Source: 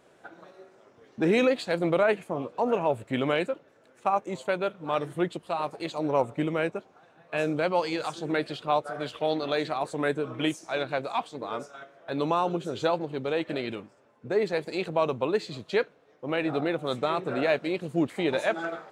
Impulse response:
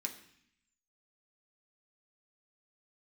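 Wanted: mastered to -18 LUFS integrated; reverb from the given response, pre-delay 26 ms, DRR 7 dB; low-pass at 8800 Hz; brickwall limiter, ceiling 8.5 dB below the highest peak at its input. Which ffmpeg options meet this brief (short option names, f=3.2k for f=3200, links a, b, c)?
-filter_complex "[0:a]lowpass=8.8k,alimiter=limit=-19dB:level=0:latency=1,asplit=2[a][b];[1:a]atrim=start_sample=2205,adelay=26[c];[b][c]afir=irnorm=-1:irlink=0,volume=-6dB[d];[a][d]amix=inputs=2:normalize=0,volume=12.5dB"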